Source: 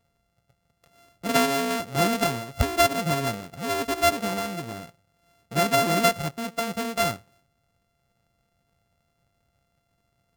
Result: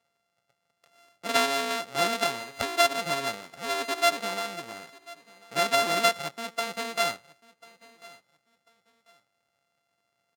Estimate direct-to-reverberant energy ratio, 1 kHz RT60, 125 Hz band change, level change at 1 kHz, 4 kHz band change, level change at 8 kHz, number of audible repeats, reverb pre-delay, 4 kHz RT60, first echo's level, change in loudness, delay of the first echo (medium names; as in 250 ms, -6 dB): no reverb, no reverb, -16.0 dB, -2.0 dB, +1.0 dB, -2.5 dB, 2, no reverb, no reverb, -22.0 dB, -2.0 dB, 1043 ms